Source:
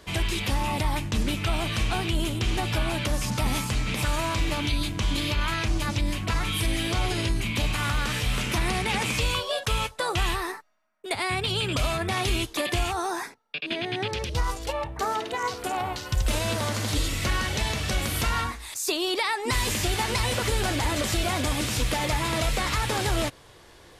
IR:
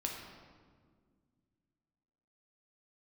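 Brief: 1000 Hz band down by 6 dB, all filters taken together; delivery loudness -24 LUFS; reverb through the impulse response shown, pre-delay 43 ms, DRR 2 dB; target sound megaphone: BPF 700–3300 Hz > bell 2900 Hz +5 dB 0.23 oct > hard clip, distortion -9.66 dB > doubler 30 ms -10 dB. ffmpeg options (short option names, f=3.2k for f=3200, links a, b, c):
-filter_complex "[0:a]equalizer=f=1k:t=o:g=-6,asplit=2[a][b];[1:a]atrim=start_sample=2205,adelay=43[c];[b][c]afir=irnorm=-1:irlink=0,volume=-3.5dB[d];[a][d]amix=inputs=2:normalize=0,highpass=700,lowpass=3.3k,equalizer=f=2.9k:t=o:w=0.23:g=5,asoftclip=type=hard:threshold=-30.5dB,asplit=2[e][f];[f]adelay=30,volume=-10dB[g];[e][g]amix=inputs=2:normalize=0,volume=8dB"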